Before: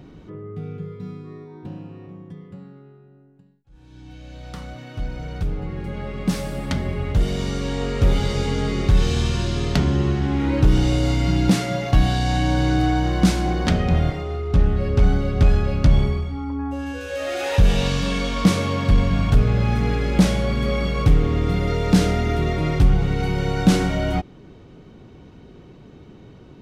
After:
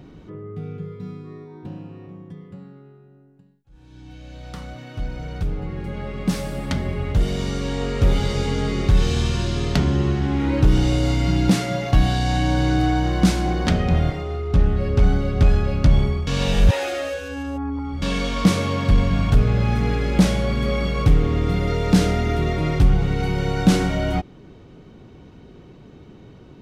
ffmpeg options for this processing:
-filter_complex "[0:a]asplit=3[a][b][c];[a]atrim=end=16.272[d];[b]atrim=start=16.268:end=18.022,asetpts=PTS-STARTPTS,areverse[e];[c]atrim=start=18.018[f];[d][e]acrossfade=d=0.004:c1=hsin:c2=hsin[g];[g][f]acrossfade=d=0.004:c1=hsin:c2=hsin"

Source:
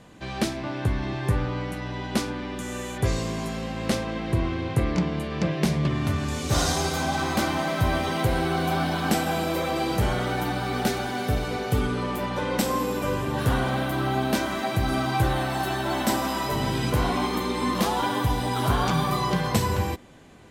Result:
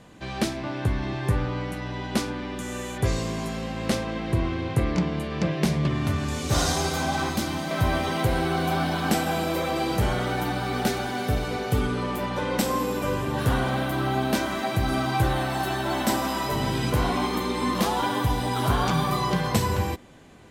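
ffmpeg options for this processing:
-filter_complex "[0:a]asettb=1/sr,asplit=3[a][b][c];[a]atrim=end=7.294[d];[b]atrim=start=7.29:end=7.71,asetpts=PTS-STARTPTS,afade=t=in:d=0.004:c=qsin,afade=t=out:st=0.416:d=0.004:c=qsin,acrossover=split=330|3000[e][f][g];[f]acompressor=threshold=-31dB:ratio=6:attack=3.2:release=140:knee=2.83:detection=peak[h];[e][h][g]amix=inputs=3:normalize=0[i];[c]atrim=start=7.706[j];[d][i]acrossfade=d=0.004:c1=hsin:c2=qsin[k];[k][j]acrossfade=d=0.004:c1=qsin:c2=hsin"

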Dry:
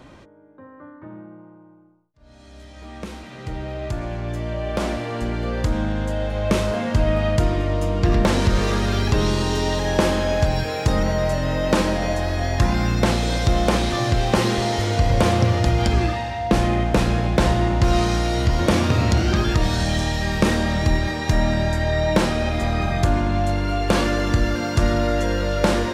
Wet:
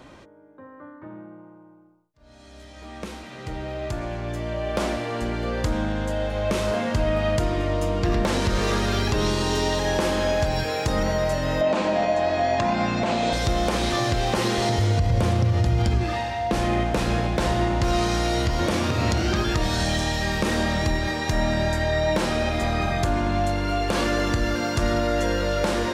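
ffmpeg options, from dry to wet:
-filter_complex "[0:a]asettb=1/sr,asplit=3[a][b][c];[a]atrim=end=11.614[d];[b]atrim=start=11.61:end=13.33,asetpts=PTS-STARTPTS,afade=t=in:d=0.004:c=qsin,afade=t=out:st=1.716:d=0.004:c=qsin,highpass=120,equalizer=f=230:t=q:w=4:g=6,equalizer=f=670:t=q:w=4:g=10,equalizer=f=990:t=q:w=4:g=4,equalizer=f=2.5k:t=q:w=4:g=4,equalizer=f=5.5k:t=q:w=4:g=-6,lowpass=f=7.1k:w=0.5412,lowpass=f=7.1k:w=1.3066[e];[c]atrim=start=13.326[f];[d][e]acrossfade=d=0.004:c1=hsin:c2=qsin[g];[g][f]acrossfade=d=0.004:c1=qsin:c2=hsin,asettb=1/sr,asplit=3[h][i][j];[h]atrim=end=14.694[k];[i]atrim=start=14.69:end=16.04,asetpts=PTS-STARTPTS,afade=t=in:d=0.004:c=qsin,afade=t=out:st=1.346:d=0.004:c=qsin,equalizer=f=100:w=0.6:g=12[l];[j]atrim=start=16.036[m];[k][l]acrossfade=d=0.004:c1=hsin:c2=qsin[n];[n][m]acrossfade=d=0.004:c1=qsin:c2=hsin,bass=f=250:g=-4,treble=f=4k:g=1,alimiter=limit=-13dB:level=0:latency=1:release=175"

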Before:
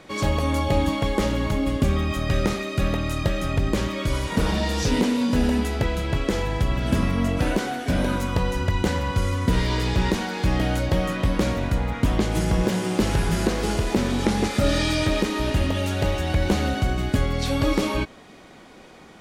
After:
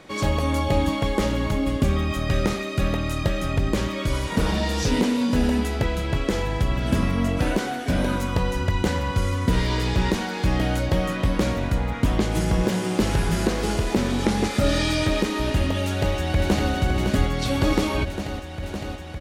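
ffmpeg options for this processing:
-filter_complex "[0:a]asplit=2[a][b];[b]afade=t=in:st=15.82:d=0.01,afade=t=out:st=16.71:d=0.01,aecho=0:1:560|1120|1680|2240|2800|3360|3920|4480|5040|5600|6160|6720:0.473151|0.402179|0.341852|0.290574|0.246988|0.20994|0.178449|0.151681|0.128929|0.10959|0.0931514|0.0791787[c];[a][c]amix=inputs=2:normalize=0"

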